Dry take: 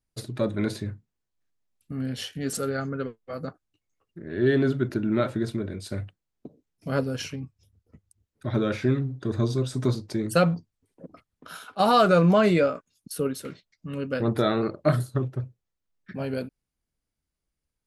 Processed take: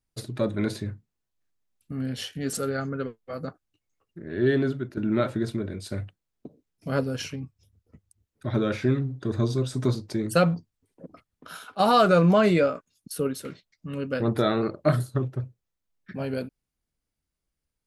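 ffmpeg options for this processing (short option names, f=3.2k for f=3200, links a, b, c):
-filter_complex "[0:a]asplit=2[a][b];[a]atrim=end=4.97,asetpts=PTS-STARTPTS,afade=t=out:st=4.31:d=0.66:c=qsin:silence=0.223872[c];[b]atrim=start=4.97,asetpts=PTS-STARTPTS,afade=t=in:d=0.004:c=hsin:silence=0.223872[d];[c][d]concat=n=2:v=0:a=1"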